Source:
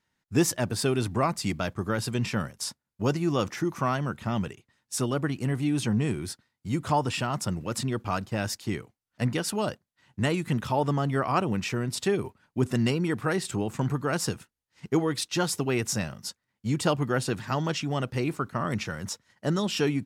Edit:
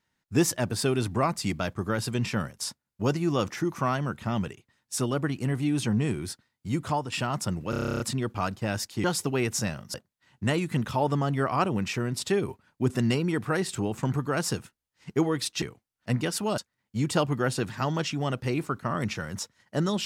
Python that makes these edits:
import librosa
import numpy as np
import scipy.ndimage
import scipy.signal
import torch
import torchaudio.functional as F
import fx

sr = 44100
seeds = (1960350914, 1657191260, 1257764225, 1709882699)

y = fx.edit(x, sr, fx.fade_out_to(start_s=6.8, length_s=0.32, floor_db=-9.5),
    fx.stutter(start_s=7.7, slice_s=0.03, count=11),
    fx.swap(start_s=8.74, length_s=0.96, other_s=15.38, other_length_s=0.9), tone=tone)